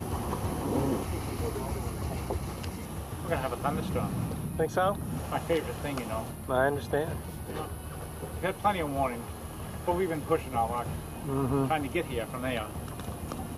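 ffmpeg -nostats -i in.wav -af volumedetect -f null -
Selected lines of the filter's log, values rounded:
mean_volume: -31.6 dB
max_volume: -12.9 dB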